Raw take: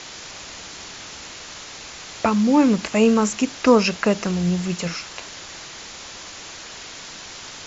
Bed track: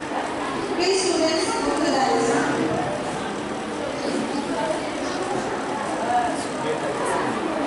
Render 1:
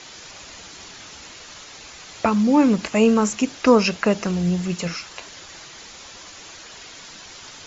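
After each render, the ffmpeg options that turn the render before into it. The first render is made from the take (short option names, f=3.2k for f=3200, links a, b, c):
-af "afftdn=nr=6:nf=-38"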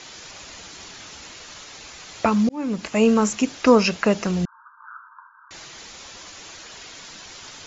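-filter_complex "[0:a]asettb=1/sr,asplit=3[a][b][c];[a]atrim=end=4.454[d];[b]atrim=start=4.45:end=5.51,asetpts=PTS-STARTPTS,afade=t=in:d=0.004:c=qsin,afade=t=out:st=1.056:d=0.004:c=qsin,asuperpass=centerf=1200:order=20:qfactor=1.7[e];[c]atrim=start=5.506[f];[d][e]acrossfade=d=0.004:c1=hsin:c2=qsin[g];[g][f]acrossfade=d=0.004:c1=qsin:c2=hsin,asplit=2[h][i];[h]atrim=end=2.49,asetpts=PTS-STARTPTS,afade=t=out:st=2.486:d=0.004:c=hsin[j];[i]atrim=start=2.49,asetpts=PTS-STARTPTS,afade=t=in:d=0.78:c=qsin[k];[j][k]concat=n=2:v=0:a=1"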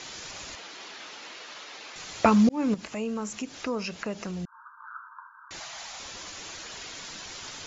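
-filter_complex "[0:a]asettb=1/sr,asplit=3[a][b][c];[a]atrim=end=0.554[d];[b]atrim=start=0.55:end=1.96,asetpts=PTS-STARTPTS,afade=t=in:d=0.004:c=qsin,afade=t=out:st=1.406:d=0.004:c=qsin,highpass=330,lowpass=4.4k[e];[c]atrim=start=1.956[f];[d][e]acrossfade=d=0.004:c1=hsin:c2=qsin[g];[g][f]acrossfade=d=0.004:c1=qsin:c2=hsin,asettb=1/sr,asplit=3[h][i][j];[h]atrim=end=2.744[k];[i]atrim=start=2.74:end=4.95,asetpts=PTS-STARTPTS,afade=t=in:d=0.004:c=qsin,afade=t=out:st=2.206:d=0.004:c=qsin,acompressor=threshold=-41dB:ratio=2:attack=3.2:release=140:knee=1:detection=peak[l];[j]atrim=start=4.946[m];[k][l]acrossfade=d=0.004:c1=hsin:c2=qsin[n];[n][m]acrossfade=d=0.004:c1=qsin:c2=hsin,asettb=1/sr,asplit=3[o][p][q];[o]atrim=end=5.604[r];[p]atrim=start=5.6:end=6,asetpts=PTS-STARTPTS,afade=t=in:d=0.004:c=qsin,afade=t=out:st=0.396:d=0.004:c=qsin,lowshelf=f=530:t=q:w=3:g=-8.5[s];[q]atrim=start=5.996[t];[r][s]acrossfade=d=0.004:c1=hsin:c2=qsin[u];[u][t]acrossfade=d=0.004:c1=qsin:c2=hsin"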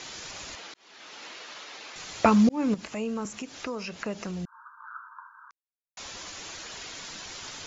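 -filter_complex "[0:a]asettb=1/sr,asplit=3[a][b][c];[a]atrim=end=3.254[d];[b]atrim=start=3.25:end=4,asetpts=PTS-STARTPTS,afade=t=in:d=0.004:c=qsin,afade=t=out:st=0.746:d=0.004:c=qsin,acrossover=split=380|2700[e][f][g];[e]acompressor=threshold=-38dB:ratio=4[h];[f]acompressor=threshold=-33dB:ratio=4[i];[g]acompressor=threshold=-40dB:ratio=4[j];[h][i][j]amix=inputs=3:normalize=0[k];[c]atrim=start=3.996[l];[d][k]acrossfade=d=0.004:c1=hsin:c2=qsin[m];[m][l]acrossfade=d=0.004:c1=qsin:c2=hsin,asplit=4[n][o][p][q];[n]atrim=end=0.74,asetpts=PTS-STARTPTS,afade=t=out:st=0.736:d=0.004:c=hsin[r];[o]atrim=start=0.74:end=5.51,asetpts=PTS-STARTPTS,afade=t=in:d=0.49,afade=t=out:st=4.766:d=0.004:c=hsin[s];[p]atrim=start=5.51:end=5.97,asetpts=PTS-STARTPTS,volume=0[t];[q]atrim=start=5.97,asetpts=PTS-STARTPTS,afade=t=in:d=0.004:c=hsin[u];[r][s][t][u]concat=n=4:v=0:a=1"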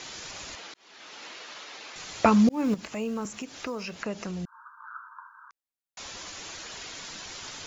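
-filter_complex "[0:a]asettb=1/sr,asplit=3[a][b][c];[a]atrim=end=2.484[d];[b]atrim=start=2.48:end=3.99,asetpts=PTS-STARTPTS,afade=t=in:d=0.004:c=qsin,afade=t=out:st=1.506:d=0.004:c=qsin,acrusher=bits=9:mode=log:mix=0:aa=0.000001[e];[c]atrim=start=3.986[f];[d][e]acrossfade=d=0.004:c1=hsin:c2=qsin[g];[g][f]acrossfade=d=0.004:c1=qsin:c2=hsin"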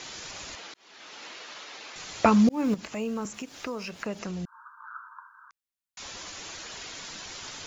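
-filter_complex "[0:a]asettb=1/sr,asplit=3[a][b][c];[a]atrim=end=3.344[d];[b]atrim=start=3.34:end=4.19,asetpts=PTS-STARTPTS,afade=t=in:d=0.004:c=qsin,afade=t=out:st=0.846:d=0.004:c=qsin,aeval=exprs='sgn(val(0))*max(abs(val(0))-0.00141,0)':c=same[e];[c]atrim=start=4.186[f];[d][e]acrossfade=d=0.004:c1=hsin:c2=qsin[g];[g][f]acrossfade=d=0.004:c1=qsin:c2=hsin,asettb=1/sr,asplit=3[h][i][j];[h]atrim=end=5.194[k];[i]atrim=start=5.19:end=6.02,asetpts=PTS-STARTPTS,afade=t=in:d=0.004:c=qsin,afade=t=out:st=0.826:d=0.004:c=qsin,equalizer=f=540:t=o:w=0.96:g=-13.5[l];[j]atrim=start=6.016[m];[k][l]acrossfade=d=0.004:c1=hsin:c2=qsin[n];[n][m]acrossfade=d=0.004:c1=qsin:c2=hsin"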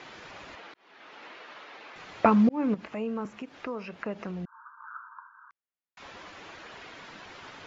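-af "lowpass=2.2k,lowshelf=f=86:g=-10"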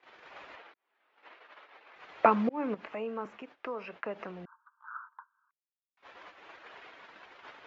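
-filter_complex "[0:a]agate=range=-22dB:threshold=-45dB:ratio=16:detection=peak,acrossover=split=350 3600:gain=0.224 1 0.2[a][b][c];[a][b][c]amix=inputs=3:normalize=0"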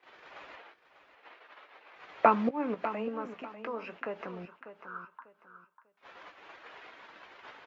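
-filter_complex "[0:a]asplit=2[a][b];[b]adelay=17,volume=-12dB[c];[a][c]amix=inputs=2:normalize=0,asplit=2[d][e];[e]aecho=0:1:595|1190|1785:0.251|0.0678|0.0183[f];[d][f]amix=inputs=2:normalize=0"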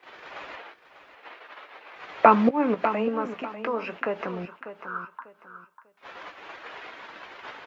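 -af "volume=9dB,alimiter=limit=-2dB:level=0:latency=1"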